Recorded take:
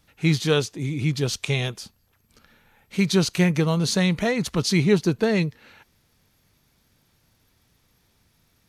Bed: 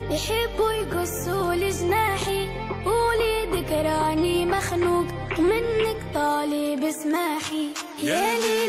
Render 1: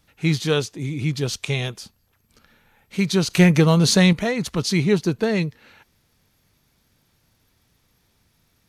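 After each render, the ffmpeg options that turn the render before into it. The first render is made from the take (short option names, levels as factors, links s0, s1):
-filter_complex "[0:a]asettb=1/sr,asplit=3[s0][s1][s2];[s0]atrim=end=3.304[s3];[s1]atrim=start=3.3:end=4.13,asetpts=PTS-STARTPTS,afade=t=in:d=0.004:c=qsin,afade=t=out:st=0.826:d=0.004:c=qsin,acontrast=63[s4];[s2]atrim=start=4.126[s5];[s3][s4]acrossfade=d=0.004:c1=hsin:c2=qsin[s6];[s6][s5]acrossfade=d=0.004:c1=qsin:c2=hsin"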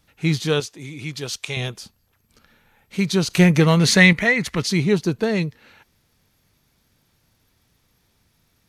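-filter_complex "[0:a]asettb=1/sr,asplit=3[s0][s1][s2];[s0]atrim=end=0.604[s3];[s1]atrim=start=0.6:end=1.57,asetpts=PTS-STARTPTS,afade=t=in:d=0.004:c=qsin,afade=t=out:st=0.966:d=0.004:c=qsin,lowshelf=f=420:g=-10.5[s4];[s2]atrim=start=1.566[s5];[s3][s4]acrossfade=d=0.004:c1=hsin:c2=qsin[s6];[s6][s5]acrossfade=d=0.004:c1=qsin:c2=hsin,asettb=1/sr,asplit=3[s7][s8][s9];[s7]atrim=end=3.614[s10];[s8]atrim=start=3.61:end=4.67,asetpts=PTS-STARTPTS,afade=t=in:d=0.004:c=qsin,afade=t=out:st=1.056:d=0.004:c=qsin,equalizer=f=2000:t=o:w=0.61:g=13[s11];[s9]atrim=start=4.666[s12];[s10][s11]acrossfade=d=0.004:c1=hsin:c2=qsin[s13];[s13][s12]acrossfade=d=0.004:c1=qsin:c2=hsin"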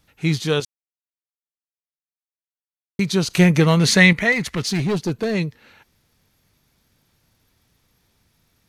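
-filter_complex "[0:a]asettb=1/sr,asplit=3[s0][s1][s2];[s0]atrim=end=4.324[s3];[s1]atrim=start=4.32:end=5.35,asetpts=PTS-STARTPTS,afade=t=in:d=0.004:c=qsin,afade=t=out:st=1.026:d=0.004:c=qsin,asoftclip=type=hard:threshold=0.141[s4];[s2]atrim=start=5.346[s5];[s3][s4]acrossfade=d=0.004:c1=hsin:c2=qsin[s6];[s6][s5]acrossfade=d=0.004:c1=qsin:c2=hsin,asplit=3[s7][s8][s9];[s7]atrim=end=0.65,asetpts=PTS-STARTPTS,afade=t=out:st=0.646:d=0.004:c=hsin[s10];[s8]atrim=start=0.65:end=2.99,asetpts=PTS-STARTPTS,volume=0[s11];[s9]atrim=start=2.99,asetpts=PTS-STARTPTS,afade=t=in:d=0.004:c=hsin[s12];[s10][s11][s12]concat=n=3:v=0:a=1"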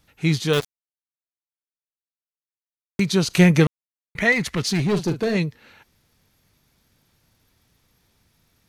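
-filter_complex "[0:a]asettb=1/sr,asplit=3[s0][s1][s2];[s0]atrim=end=0.534[s3];[s1]atrim=start=0.53:end=3,asetpts=PTS-STARTPTS,afade=t=in:d=0.004:c=qsin,afade=t=out:st=2.466:d=0.004:c=qsin,acrusher=bits=3:mix=0:aa=0.5[s4];[s2]atrim=start=2.996[s5];[s3][s4]acrossfade=d=0.004:c1=hsin:c2=qsin[s6];[s6][s5]acrossfade=d=0.004:c1=qsin:c2=hsin,asettb=1/sr,asplit=3[s7][s8][s9];[s7]atrim=end=4.884[s10];[s8]atrim=start=4.88:end=5.37,asetpts=PTS-STARTPTS,afade=t=in:d=0.004:c=qsin,afade=t=out:st=0.486:d=0.004:c=qsin,asplit=2[s11][s12];[s12]adelay=43,volume=0.316[s13];[s11][s13]amix=inputs=2:normalize=0,atrim=end_sample=21609[s14];[s9]atrim=start=5.366[s15];[s10][s14]acrossfade=d=0.004:c1=hsin:c2=qsin[s16];[s16][s15]acrossfade=d=0.004:c1=qsin:c2=hsin,asplit=3[s17][s18][s19];[s17]atrim=end=3.67,asetpts=PTS-STARTPTS,afade=t=out:st=3.666:d=0.004:c=hsin[s20];[s18]atrim=start=3.67:end=4.15,asetpts=PTS-STARTPTS,volume=0[s21];[s19]atrim=start=4.15,asetpts=PTS-STARTPTS,afade=t=in:d=0.004:c=hsin[s22];[s20][s21][s22]concat=n=3:v=0:a=1"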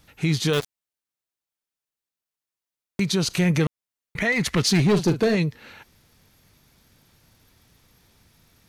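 -filter_complex "[0:a]asplit=2[s0][s1];[s1]acompressor=threshold=0.0501:ratio=6,volume=0.841[s2];[s0][s2]amix=inputs=2:normalize=0,alimiter=limit=0.224:level=0:latency=1:release=122"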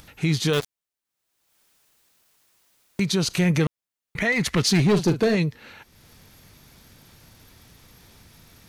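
-af "acompressor=mode=upward:threshold=0.00794:ratio=2.5"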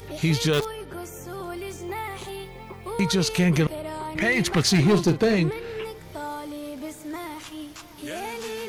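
-filter_complex "[1:a]volume=0.299[s0];[0:a][s0]amix=inputs=2:normalize=0"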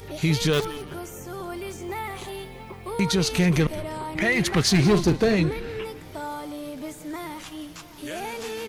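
-filter_complex "[0:a]asplit=5[s0][s1][s2][s3][s4];[s1]adelay=173,afreqshift=-140,volume=0.158[s5];[s2]adelay=346,afreqshift=-280,volume=0.0684[s6];[s3]adelay=519,afreqshift=-420,volume=0.0292[s7];[s4]adelay=692,afreqshift=-560,volume=0.0126[s8];[s0][s5][s6][s7][s8]amix=inputs=5:normalize=0"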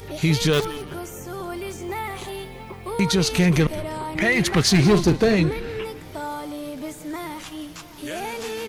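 -af "volume=1.33"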